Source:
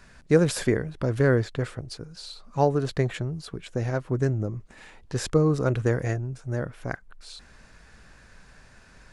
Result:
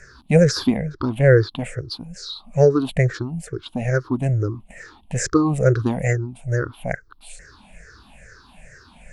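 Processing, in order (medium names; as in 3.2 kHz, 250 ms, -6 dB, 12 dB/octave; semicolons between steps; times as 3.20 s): drifting ripple filter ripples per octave 0.53, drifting -2.3 Hz, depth 24 dB; 0.77–1.49 s: treble shelf 7.7 kHz -9 dB; warped record 45 rpm, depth 100 cents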